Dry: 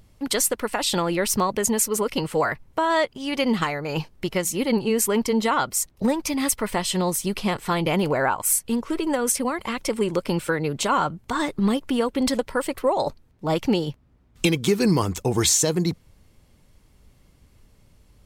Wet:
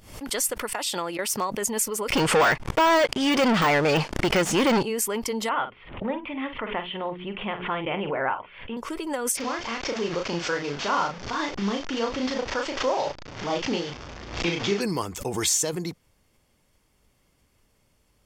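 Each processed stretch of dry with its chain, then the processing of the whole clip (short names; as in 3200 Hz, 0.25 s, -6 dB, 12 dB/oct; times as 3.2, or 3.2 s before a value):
0.73–1.5 HPF 190 Hz 6 dB/oct + gate with hold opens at -15 dBFS, closes at -19 dBFS + hard clip -13 dBFS
2.1–4.83 sample leveller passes 5 + air absorption 60 m + de-esser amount 50%
5.49–8.77 steep low-pass 3300 Hz 72 dB/oct + notches 60/120/180/240/300/360/420/480 Hz + doubler 45 ms -9.5 dB
9.37–14.81 delta modulation 32 kbps, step -26 dBFS + doubler 35 ms -3.5 dB
whole clip: low shelf 250 Hz -10.5 dB; notch 4000 Hz, Q 12; backwards sustainer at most 94 dB/s; gain -3.5 dB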